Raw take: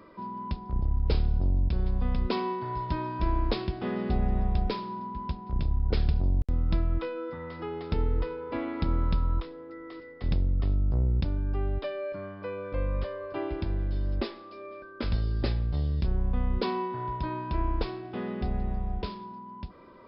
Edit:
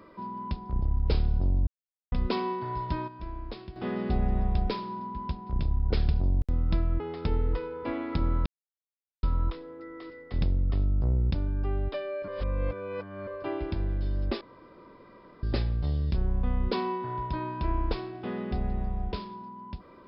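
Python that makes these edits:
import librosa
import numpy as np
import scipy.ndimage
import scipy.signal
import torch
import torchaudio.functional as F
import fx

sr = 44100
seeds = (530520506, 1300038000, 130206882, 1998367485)

y = fx.edit(x, sr, fx.silence(start_s=1.67, length_s=0.45),
    fx.fade_down_up(start_s=2.66, length_s=1.52, db=-11.5, fade_s=0.42, curve='log'),
    fx.cut(start_s=7.0, length_s=0.67),
    fx.insert_silence(at_s=9.13, length_s=0.77),
    fx.reverse_span(start_s=12.18, length_s=0.99),
    fx.room_tone_fill(start_s=14.31, length_s=1.02), tone=tone)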